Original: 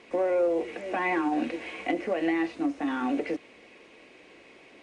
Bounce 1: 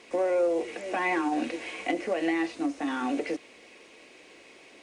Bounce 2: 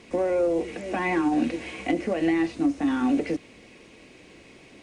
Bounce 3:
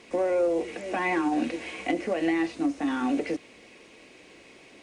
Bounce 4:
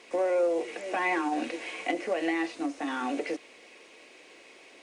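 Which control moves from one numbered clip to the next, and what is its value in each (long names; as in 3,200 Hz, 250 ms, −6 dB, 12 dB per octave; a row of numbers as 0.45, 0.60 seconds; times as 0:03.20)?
bass and treble, bass: −4, +14, +5, −12 decibels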